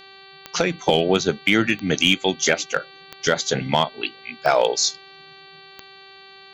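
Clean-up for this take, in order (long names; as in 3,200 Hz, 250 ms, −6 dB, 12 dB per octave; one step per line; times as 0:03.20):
clipped peaks rebuilt −7 dBFS
click removal
hum removal 388.6 Hz, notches 11
notch filter 4,500 Hz, Q 30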